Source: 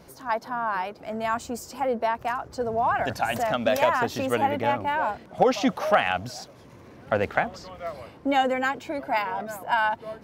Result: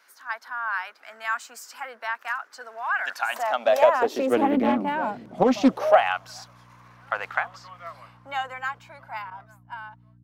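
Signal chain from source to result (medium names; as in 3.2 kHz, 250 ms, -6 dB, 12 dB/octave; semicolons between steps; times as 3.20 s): fade out at the end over 3.17 s; level rider gain up to 3 dB; 9.30–9.86 s: expander -38 dBFS; high-pass sweep 230 Hz -> 1.1 kHz, 5.63–6.14 s; hum 60 Hz, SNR 29 dB; high-pass sweep 1.5 kHz -> 120 Hz, 3.06–5.23 s; loudspeaker Doppler distortion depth 0.41 ms; trim -5 dB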